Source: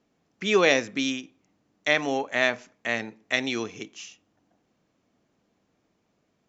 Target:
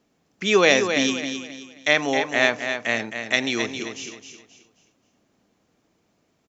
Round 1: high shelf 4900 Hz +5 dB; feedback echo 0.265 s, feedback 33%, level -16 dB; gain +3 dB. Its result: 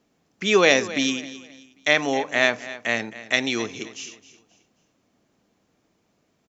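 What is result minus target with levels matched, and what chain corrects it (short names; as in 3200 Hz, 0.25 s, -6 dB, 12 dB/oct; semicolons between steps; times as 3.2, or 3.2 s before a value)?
echo-to-direct -8.5 dB
high shelf 4900 Hz +5 dB; feedback echo 0.265 s, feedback 33%, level -7.5 dB; gain +3 dB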